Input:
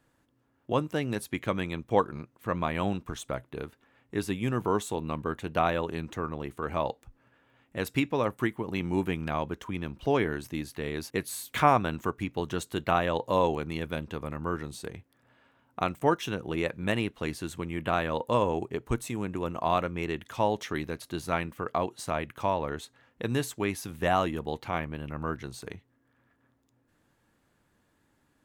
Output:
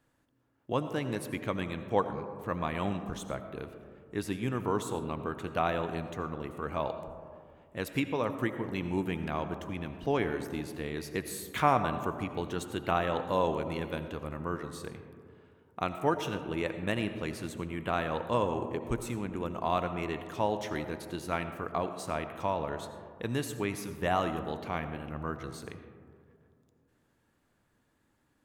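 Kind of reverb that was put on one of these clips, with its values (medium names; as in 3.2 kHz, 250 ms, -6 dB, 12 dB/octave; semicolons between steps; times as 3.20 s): algorithmic reverb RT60 2.2 s, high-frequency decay 0.25×, pre-delay 45 ms, DRR 9 dB; trim -3.5 dB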